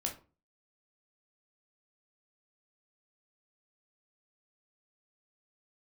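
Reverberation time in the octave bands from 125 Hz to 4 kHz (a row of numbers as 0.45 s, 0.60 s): 0.45 s, 0.45 s, 0.35 s, 0.35 s, 0.25 s, 0.20 s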